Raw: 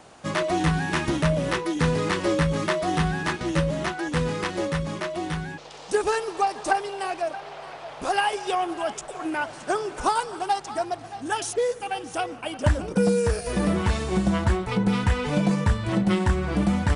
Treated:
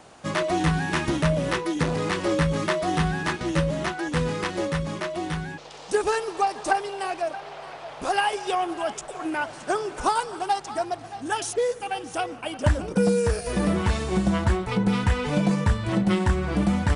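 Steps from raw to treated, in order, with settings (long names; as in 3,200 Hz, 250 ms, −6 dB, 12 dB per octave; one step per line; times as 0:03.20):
0:01.83–0:02.32: saturating transformer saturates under 460 Hz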